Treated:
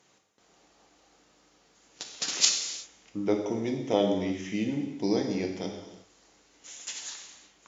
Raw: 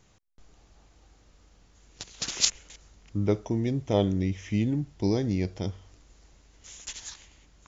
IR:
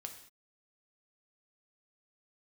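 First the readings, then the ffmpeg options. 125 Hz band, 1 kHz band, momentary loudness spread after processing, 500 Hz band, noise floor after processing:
−10.5 dB, +2.5 dB, 19 LU, +1.0 dB, −64 dBFS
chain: -filter_complex "[0:a]highpass=270[link_01];[1:a]atrim=start_sample=2205,asetrate=27342,aresample=44100[link_02];[link_01][link_02]afir=irnorm=-1:irlink=0,volume=3dB"

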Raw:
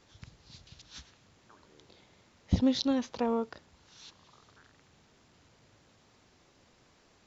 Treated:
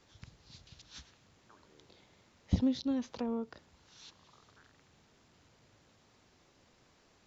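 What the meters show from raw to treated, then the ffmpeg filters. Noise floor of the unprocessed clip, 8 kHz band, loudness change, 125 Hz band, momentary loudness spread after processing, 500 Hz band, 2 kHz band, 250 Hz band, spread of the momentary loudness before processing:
−65 dBFS, can't be measured, −4.5 dB, −3.0 dB, 21 LU, −8.0 dB, −6.5 dB, −3.5 dB, 22 LU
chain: -filter_complex "[0:a]acrossover=split=370[link_01][link_02];[link_02]acompressor=threshold=-39dB:ratio=6[link_03];[link_01][link_03]amix=inputs=2:normalize=0,volume=-2.5dB"

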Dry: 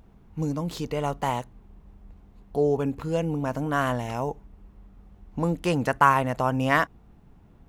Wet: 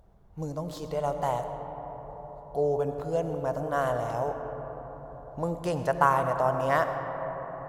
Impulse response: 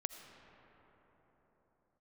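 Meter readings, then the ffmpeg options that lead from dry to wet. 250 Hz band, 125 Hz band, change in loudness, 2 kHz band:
−8.0 dB, −5.5 dB, −3.5 dB, −6.5 dB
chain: -filter_complex "[0:a]equalizer=frequency=250:width_type=o:width=0.67:gain=-9,equalizer=frequency=630:width_type=o:width=0.67:gain=8,equalizer=frequency=2500:width_type=o:width=0.67:gain=-8[link_01];[1:a]atrim=start_sample=2205,asetrate=40131,aresample=44100[link_02];[link_01][link_02]afir=irnorm=-1:irlink=0,volume=-3.5dB"

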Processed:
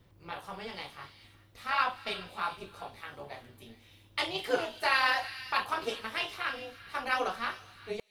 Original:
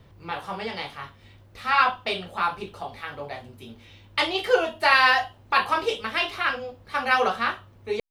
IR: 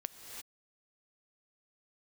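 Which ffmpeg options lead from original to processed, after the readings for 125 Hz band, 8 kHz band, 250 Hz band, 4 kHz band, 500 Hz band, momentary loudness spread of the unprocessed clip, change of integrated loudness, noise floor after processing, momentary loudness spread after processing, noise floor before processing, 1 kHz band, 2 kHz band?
−8.5 dB, −4.0 dB, −8.0 dB, −7.5 dB, −9.5 dB, 17 LU, −9.0 dB, −60 dBFS, 17 LU, −53 dBFS, −9.5 dB, −9.0 dB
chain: -filter_complex "[0:a]tremolo=f=220:d=0.667,asplit=2[link_01][link_02];[link_02]aderivative[link_03];[1:a]atrim=start_sample=2205,asetrate=36162,aresample=44100[link_04];[link_03][link_04]afir=irnorm=-1:irlink=0,volume=1.5dB[link_05];[link_01][link_05]amix=inputs=2:normalize=0,volume=-6.5dB"

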